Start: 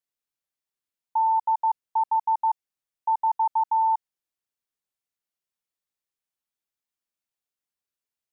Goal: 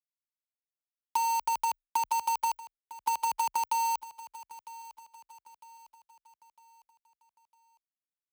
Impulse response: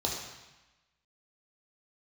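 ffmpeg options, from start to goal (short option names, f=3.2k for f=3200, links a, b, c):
-af "lowpass=1k,afftfilt=real='re*gte(hypot(re,im),0.0447)':imag='im*gte(hypot(re,im),0.0447)':win_size=1024:overlap=0.75,highpass=630,acompressor=threshold=-32dB:ratio=16,crystalizer=i=7:c=0,acrusher=bits=5:mix=0:aa=0.000001,afreqshift=27,aecho=1:1:954|1908|2862|3816:0.141|0.0607|0.0261|0.0112,volume=3.5dB"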